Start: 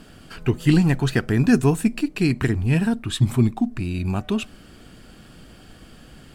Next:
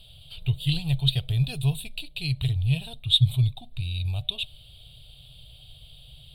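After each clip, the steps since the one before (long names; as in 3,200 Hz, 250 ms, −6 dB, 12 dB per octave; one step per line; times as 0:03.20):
drawn EQ curve 140 Hz 0 dB, 210 Hz −30 dB, 350 Hz −26 dB, 600 Hz −9 dB, 1,700 Hz −29 dB, 2,400 Hz −7 dB, 3,700 Hz +14 dB, 6,000 Hz −27 dB, 9,000 Hz −3 dB, 14,000 Hz 0 dB
level −1 dB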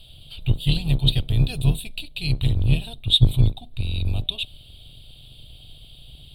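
sub-octave generator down 2 octaves, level 0 dB
level +2.5 dB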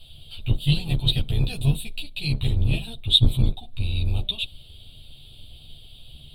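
string-ensemble chorus
level +2.5 dB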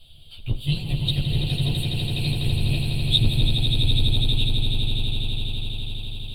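echo that builds up and dies away 83 ms, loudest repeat 8, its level −8 dB
level −3.5 dB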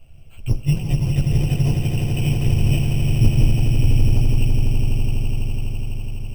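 bad sample-rate conversion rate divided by 8×, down filtered, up hold
level +5.5 dB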